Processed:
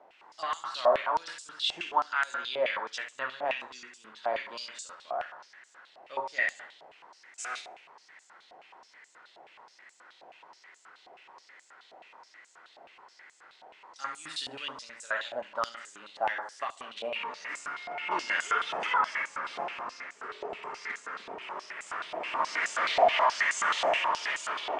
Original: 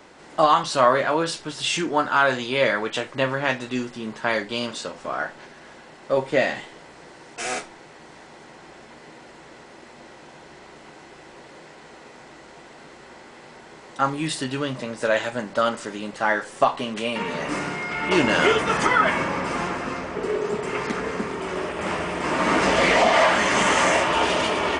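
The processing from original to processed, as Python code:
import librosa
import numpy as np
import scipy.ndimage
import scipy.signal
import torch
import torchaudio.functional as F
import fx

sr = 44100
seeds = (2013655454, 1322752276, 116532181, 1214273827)

y = fx.high_shelf(x, sr, hz=5400.0, db=9.5, at=(13.98, 14.9))
y = fx.echo_feedback(y, sr, ms=69, feedback_pct=45, wet_db=-8.5)
y = fx.filter_held_bandpass(y, sr, hz=9.4, low_hz=710.0, high_hz=7300.0)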